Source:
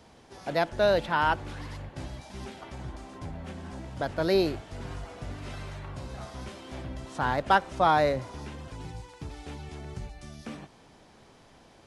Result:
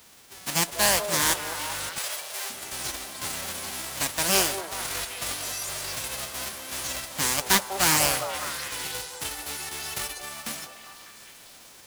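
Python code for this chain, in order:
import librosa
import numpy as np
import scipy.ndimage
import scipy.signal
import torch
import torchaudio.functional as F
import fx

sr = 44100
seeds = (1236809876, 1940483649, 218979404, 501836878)

p1 = fx.envelope_flatten(x, sr, power=0.1)
p2 = fx.rider(p1, sr, range_db=4, speed_s=0.5)
p3 = p1 + (p2 * librosa.db_to_amplitude(3.0))
p4 = fx.brickwall_highpass(p3, sr, low_hz=390.0, at=(1.98, 2.5))
p5 = p4 + fx.echo_stepped(p4, sr, ms=199, hz=570.0, octaves=0.7, feedback_pct=70, wet_db=-4, dry=0)
p6 = fx.rev_schroeder(p5, sr, rt60_s=3.9, comb_ms=31, drr_db=20.0)
p7 = fx.doppler_dist(p6, sr, depth_ms=0.44)
y = p7 * librosa.db_to_amplitude(-4.0)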